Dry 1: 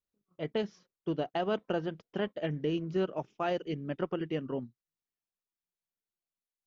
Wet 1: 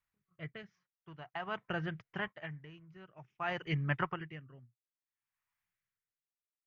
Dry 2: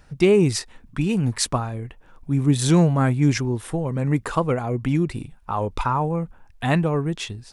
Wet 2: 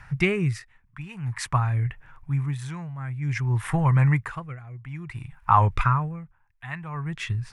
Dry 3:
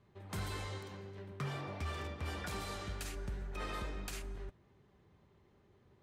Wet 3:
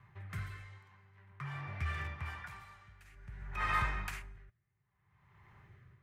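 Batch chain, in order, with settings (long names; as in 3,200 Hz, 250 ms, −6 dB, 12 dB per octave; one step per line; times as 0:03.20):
octave-band graphic EQ 125/250/500/1,000/2,000/4,000/8,000 Hz +10/−11/−10/+9/+11/−5/−3 dB
speech leveller within 3 dB 2 s
rotating-speaker cabinet horn 0.7 Hz
tremolo with a sine in dB 0.53 Hz, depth 21 dB
level +3.5 dB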